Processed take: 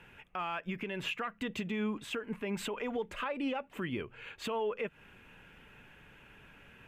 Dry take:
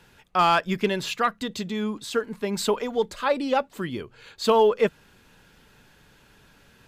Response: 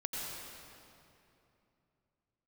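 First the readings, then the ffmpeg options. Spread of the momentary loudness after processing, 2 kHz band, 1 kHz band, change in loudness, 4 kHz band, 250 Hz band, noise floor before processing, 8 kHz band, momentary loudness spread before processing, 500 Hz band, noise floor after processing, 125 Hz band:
21 LU, −8.5 dB, −15.5 dB, −12.5 dB, −11.5 dB, −8.0 dB, −57 dBFS, −14.0 dB, 12 LU, −14.0 dB, −60 dBFS, −9.0 dB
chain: -af "highshelf=frequency=3400:width_type=q:width=3:gain=-8.5,acompressor=threshold=-24dB:ratio=6,alimiter=level_in=0.5dB:limit=-24dB:level=0:latency=1:release=125,volume=-0.5dB,volume=-2dB"

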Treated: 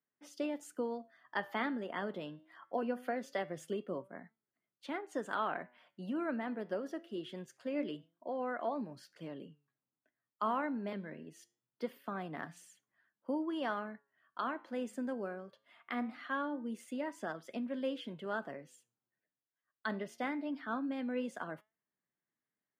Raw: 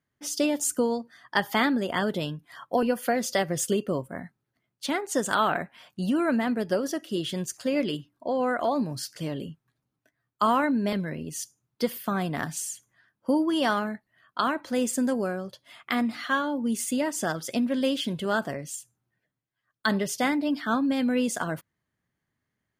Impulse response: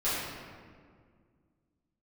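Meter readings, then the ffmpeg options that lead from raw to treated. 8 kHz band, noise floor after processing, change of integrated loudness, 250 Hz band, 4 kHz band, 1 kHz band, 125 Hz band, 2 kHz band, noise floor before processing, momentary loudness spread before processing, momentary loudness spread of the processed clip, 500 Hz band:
−26.0 dB, below −85 dBFS, −12.0 dB, −13.0 dB, −17.5 dB, −11.0 dB, −16.0 dB, −12.0 dB, −83 dBFS, 11 LU, 12 LU, −11.0 dB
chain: -filter_complex "[0:a]acrossover=split=180 3000:gain=0.224 1 0.158[link_01][link_02][link_03];[link_01][link_02][link_03]amix=inputs=3:normalize=0,flanger=delay=4.4:depth=5.9:regen=89:speed=0.23:shape=triangular,highpass=110,volume=-6.5dB"

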